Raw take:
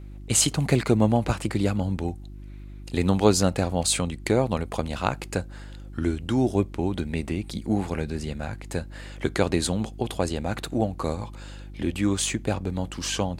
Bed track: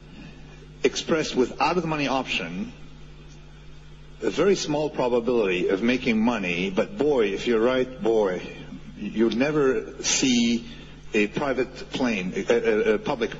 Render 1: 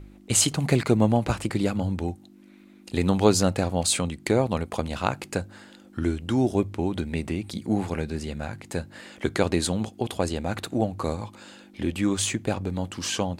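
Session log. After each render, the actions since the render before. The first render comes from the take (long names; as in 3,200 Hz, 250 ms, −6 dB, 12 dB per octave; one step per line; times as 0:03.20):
hum removal 50 Hz, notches 3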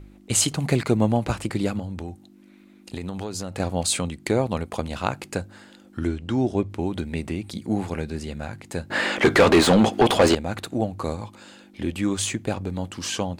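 0:01.79–0:03.60: downward compressor, threshold −27 dBFS
0:06.07–0:06.70: high-frequency loss of the air 63 metres
0:08.90–0:10.35: mid-hump overdrive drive 32 dB, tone 1,700 Hz, clips at −4.5 dBFS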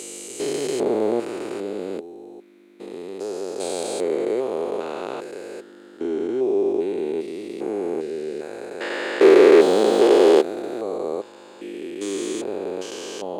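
spectrum averaged block by block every 400 ms
high-pass with resonance 400 Hz, resonance Q 4.9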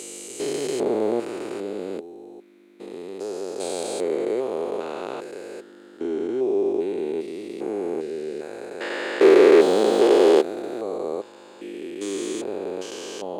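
level −1.5 dB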